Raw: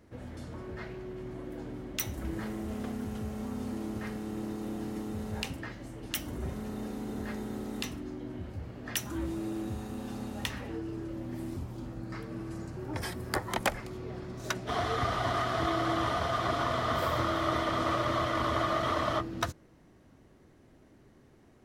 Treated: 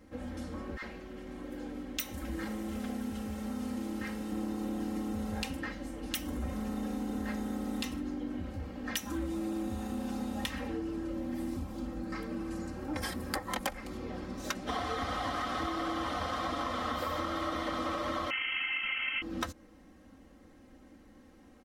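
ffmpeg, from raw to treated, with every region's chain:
ffmpeg -i in.wav -filter_complex "[0:a]asettb=1/sr,asplit=3[link_01][link_02][link_03];[link_01]atrim=end=0.774[link_04];[link_02]atrim=start=0.77:end=4.32,asetpts=PTS-STARTPTS,afade=type=in:duration=0.004:curve=qsin,afade=type=out:start_time=3.546:duration=0.004:curve=qsin,lowshelf=frequency=370:gain=-5,acrossover=split=930[link_05][link_06];[link_05]adelay=50[link_07];[link_07][link_06]amix=inputs=2:normalize=0,atrim=end_sample=156555[link_08];[link_03]atrim=start=4.316[link_09];[link_04][link_08]acrossfade=duration=0.004:curve1=hsin:curve2=qsin[link_10];[link_10][link_09]acrossfade=duration=0.004:curve1=qsin:curve2=hsin,asettb=1/sr,asplit=3[link_11][link_12][link_13];[link_11]atrim=end=18.304[link_14];[link_12]atrim=start=18.3:end=19.22,asetpts=PTS-STARTPTS,afade=type=in:duration=0.004:curve=qsin,afade=type=out:start_time=0.916:duration=0.004:curve=qsin,highpass=frequency=160:poles=1,lowpass=frequency=2800:width_type=q:width=0.5098,lowpass=frequency=2800:width_type=q:width=0.6013,lowpass=frequency=2800:width_type=q:width=0.9,lowpass=frequency=2800:width_type=q:width=2.563,afreqshift=-3300[link_15];[link_13]atrim=start=19.216[link_16];[link_14][link_15]acrossfade=duration=0.004:curve1=hsin:curve2=qsin[link_17];[link_17][link_16]acrossfade=duration=0.004:curve1=qsin:curve2=hsin,aecho=1:1:3.8:0.93,acompressor=threshold=-31dB:ratio=6" out.wav

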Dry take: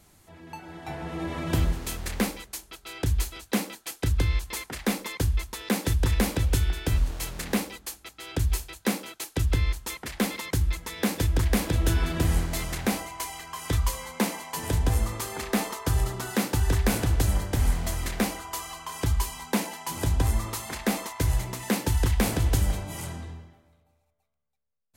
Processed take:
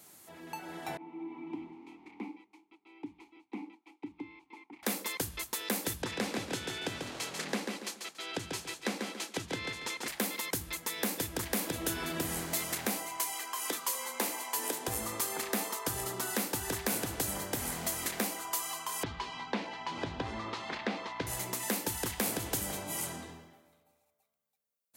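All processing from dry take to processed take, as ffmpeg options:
ffmpeg -i in.wav -filter_complex "[0:a]asettb=1/sr,asplit=3[link_01][link_02][link_03];[link_01]atrim=end=0.974[link_04];[link_02]atrim=start=0.97:end=4.83,asetpts=PTS-STARTPTS,afade=type=in:duration=0.004:curve=qsin,afade=type=out:start_time=3.856:duration=0.004:curve=qsin,asplit=3[link_05][link_06][link_07];[link_05]bandpass=frequency=300:width_type=q:width=8,volume=0dB[link_08];[link_06]bandpass=frequency=870:width_type=q:width=8,volume=-6dB[link_09];[link_07]bandpass=frequency=2240:width_type=q:width=8,volume=-9dB[link_10];[link_08][link_09][link_10]amix=inputs=3:normalize=0,aemphasis=mode=reproduction:type=75kf[link_11];[link_03]atrim=start=4.826[link_12];[link_04][link_11]acrossfade=duration=0.004:curve1=hsin:curve2=qsin[link_13];[link_13][link_12]acrossfade=duration=0.004:curve1=qsin:curve2=hsin,asettb=1/sr,asplit=3[link_14][link_15][link_16];[link_14]atrim=end=6.024[link_17];[link_15]atrim=start=6.02:end=10.08,asetpts=PTS-STARTPTS,afade=type=in:duration=0.004:curve=qsin,afade=type=out:start_time=4.056:duration=0.004:curve=qsin,highpass=110,lowpass=5600,aecho=1:1:141|282|423:0.501|0.11|0.0243,atrim=end_sample=179046[link_18];[link_16]atrim=start=10.076[link_19];[link_17][link_18]acrossfade=duration=0.004:curve1=hsin:curve2=qsin[link_20];[link_20][link_19]acrossfade=duration=0.004:curve1=qsin:curve2=hsin,asettb=1/sr,asplit=3[link_21][link_22][link_23];[link_21]atrim=end=13.334[link_24];[link_22]atrim=start=13.33:end=14.88,asetpts=PTS-STARTPTS,afade=type=in:duration=0.004:curve=qsin,afade=type=out:start_time=1.546:duration=0.004:curve=qsin,highpass=frequency=250:width=0.5412,highpass=frequency=250:width=1.3066,asplit=2[link_25][link_26];[link_26]adelay=16,volume=-13dB[link_27];[link_25][link_27]amix=inputs=2:normalize=0,atrim=end_sample=68355[link_28];[link_23]atrim=start=14.876[link_29];[link_24][link_28]acrossfade=duration=0.004:curve1=hsin:curve2=qsin[link_30];[link_30][link_29]acrossfade=duration=0.004:curve1=qsin:curve2=hsin,asettb=1/sr,asplit=3[link_31][link_32][link_33];[link_31]atrim=end=19.034[link_34];[link_32]atrim=start=19.03:end=21.27,asetpts=PTS-STARTPTS,afade=type=in:duration=0.004:curve=qsin,afade=type=out:start_time=2.236:duration=0.004:curve=qsin,lowpass=frequency=4100:width=0.5412,lowpass=frequency=4100:width=1.3066,aeval=exprs='val(0)+0.00501*(sin(2*PI*60*n/s)+sin(2*PI*2*60*n/s)/2+sin(2*PI*3*60*n/s)/3+sin(2*PI*4*60*n/s)/4+sin(2*PI*5*60*n/s)/5)':channel_layout=same[link_35];[link_33]atrim=start=21.266[link_36];[link_34][link_35]acrossfade=duration=0.004:curve1=hsin:curve2=qsin[link_37];[link_37][link_36]acrossfade=duration=0.004:curve1=qsin:curve2=hsin,highpass=220,acompressor=threshold=-36dB:ratio=2,highshelf=frequency=8700:gain=10.5" out.wav

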